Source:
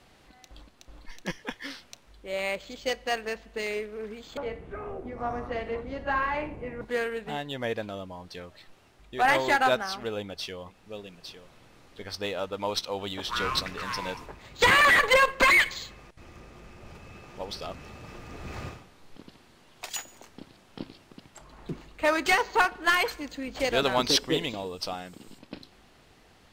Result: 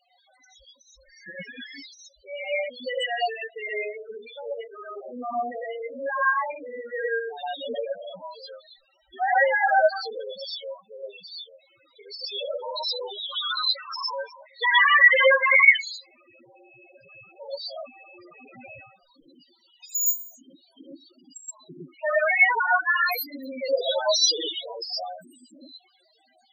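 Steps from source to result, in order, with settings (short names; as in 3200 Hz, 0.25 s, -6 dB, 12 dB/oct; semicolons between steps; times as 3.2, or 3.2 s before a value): RIAA curve recording; non-linear reverb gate 0.15 s rising, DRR -5.5 dB; loudest bins only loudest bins 4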